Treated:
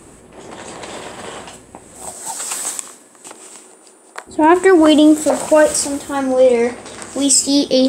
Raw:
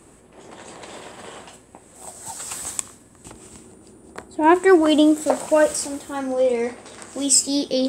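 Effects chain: 2.13–4.26 s: high-pass 220 Hz -> 720 Hz 12 dB/octave; loudness maximiser +9 dB; trim -1 dB

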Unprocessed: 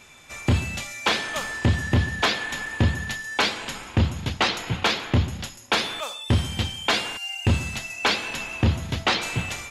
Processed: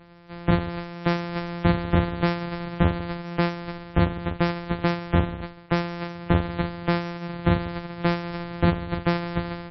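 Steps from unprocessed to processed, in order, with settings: sorted samples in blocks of 256 samples; loudest bins only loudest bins 64

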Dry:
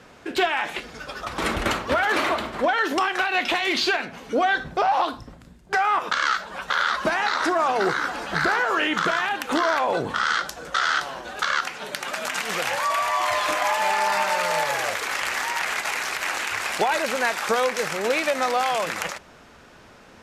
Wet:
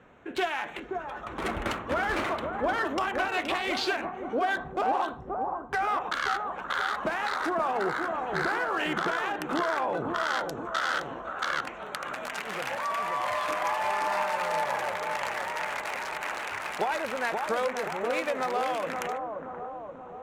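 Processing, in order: local Wiener filter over 9 samples; on a send: bucket-brigade echo 527 ms, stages 4096, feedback 58%, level -4.5 dB; on the sum: trim -6.5 dB

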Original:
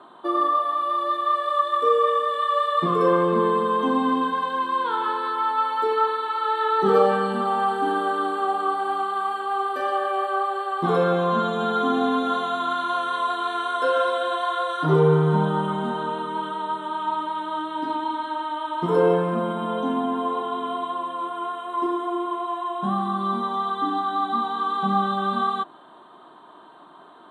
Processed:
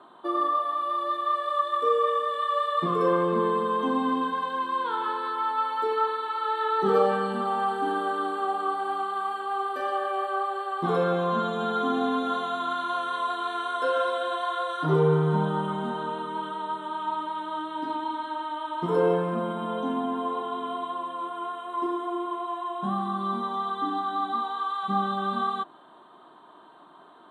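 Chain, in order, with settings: 24.32–24.88 s: high-pass 260 Hz -> 1 kHz 12 dB/octave; trim -4 dB

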